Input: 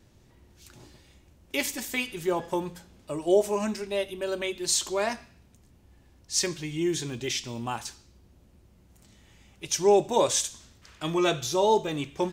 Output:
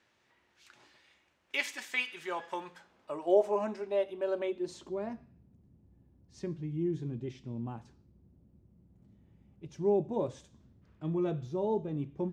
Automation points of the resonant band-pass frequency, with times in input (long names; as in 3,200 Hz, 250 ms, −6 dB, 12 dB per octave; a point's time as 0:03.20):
resonant band-pass, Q 1
0:02.51 1,800 Hz
0:03.57 640 Hz
0:04.36 640 Hz
0:05.02 160 Hz